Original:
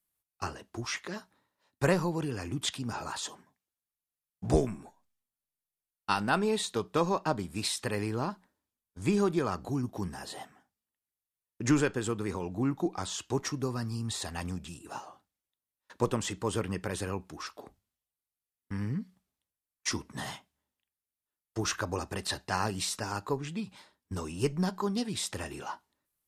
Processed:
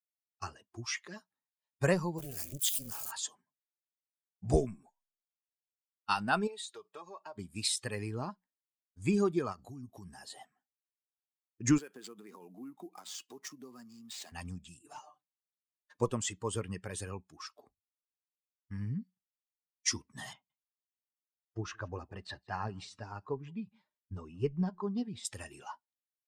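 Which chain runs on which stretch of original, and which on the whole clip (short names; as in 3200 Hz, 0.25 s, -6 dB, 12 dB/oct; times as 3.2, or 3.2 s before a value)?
2.18–3.11 switching spikes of -26.5 dBFS + high shelf 11000 Hz +7.5 dB + AM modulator 280 Hz, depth 85%
6.47–7.38 notch comb 250 Hz + compressor 4:1, threshold -34 dBFS + tone controls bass -15 dB, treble -2 dB
9.52–10.11 HPF 40 Hz + high shelf 6400 Hz +5.5 dB + compressor, threshold -35 dBFS
11.78–14.32 compressor 5:1, threshold -35 dBFS + sample-rate reducer 12000 Hz, jitter 20% + HPF 180 Hz 24 dB/oct
14.84–16.01 HPF 60 Hz + comb 6.7 ms, depth 61% + overloaded stage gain 35.5 dB
20.33–25.25 tape spacing loss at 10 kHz 21 dB + echo 0.165 s -21 dB
whole clip: per-bin expansion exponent 1.5; bell 7100 Hz +5 dB 0.98 oct; notch 1000 Hz, Q 27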